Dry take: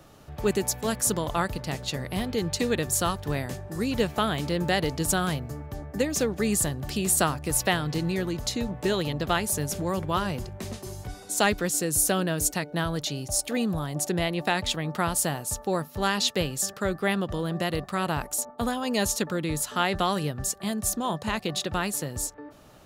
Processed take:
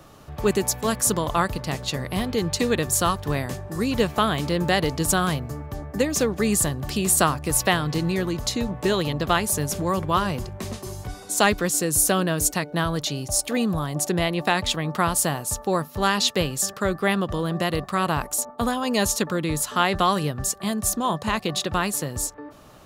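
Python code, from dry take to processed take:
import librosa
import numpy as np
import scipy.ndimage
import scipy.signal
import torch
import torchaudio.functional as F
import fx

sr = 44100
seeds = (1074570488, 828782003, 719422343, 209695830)

y = fx.peak_eq(x, sr, hz=1100.0, db=6.0, octaves=0.22)
y = y * 10.0 ** (3.5 / 20.0)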